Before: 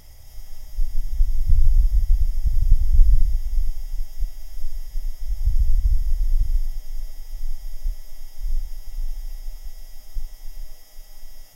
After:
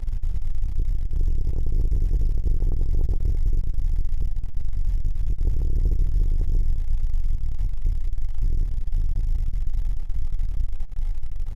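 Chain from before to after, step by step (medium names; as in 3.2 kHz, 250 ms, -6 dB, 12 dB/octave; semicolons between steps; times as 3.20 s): spectral levelling over time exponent 0.4; valve stage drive 21 dB, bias 0.7; comb 2.4 ms, depth 65%; reverse; upward compressor, threshold -21 dBFS; reverse; feedback delay 206 ms, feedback 23%, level -11.5 dB; hysteresis with a dead band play -27.5 dBFS; resampled via 32 kHz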